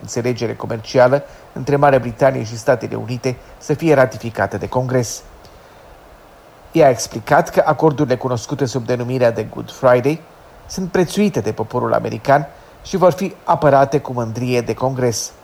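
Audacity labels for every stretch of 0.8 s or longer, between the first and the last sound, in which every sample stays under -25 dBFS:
5.450000	6.750000	silence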